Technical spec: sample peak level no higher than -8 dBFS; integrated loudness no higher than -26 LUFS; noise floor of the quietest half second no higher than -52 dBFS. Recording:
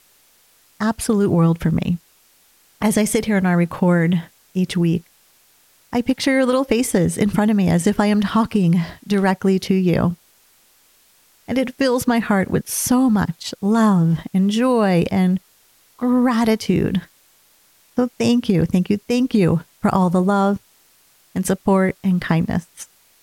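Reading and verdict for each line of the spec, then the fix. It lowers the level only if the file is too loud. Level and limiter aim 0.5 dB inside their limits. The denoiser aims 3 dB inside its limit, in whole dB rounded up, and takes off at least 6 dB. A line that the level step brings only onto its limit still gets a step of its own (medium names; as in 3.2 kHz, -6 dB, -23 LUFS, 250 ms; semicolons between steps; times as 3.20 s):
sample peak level -2.5 dBFS: fail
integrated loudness -18.5 LUFS: fail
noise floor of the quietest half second -56 dBFS: pass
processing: trim -8 dB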